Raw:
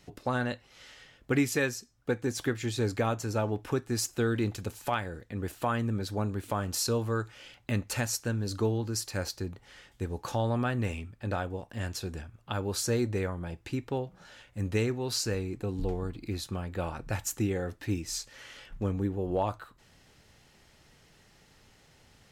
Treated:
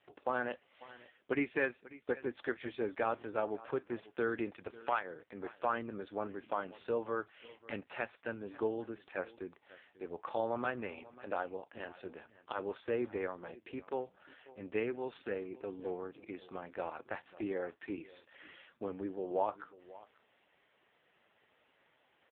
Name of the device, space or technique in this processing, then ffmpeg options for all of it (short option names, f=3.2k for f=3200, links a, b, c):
satellite phone: -af "highpass=380,lowpass=3.4k,aecho=1:1:541:0.112,volume=-1.5dB" -ar 8000 -c:a libopencore_amrnb -b:a 5150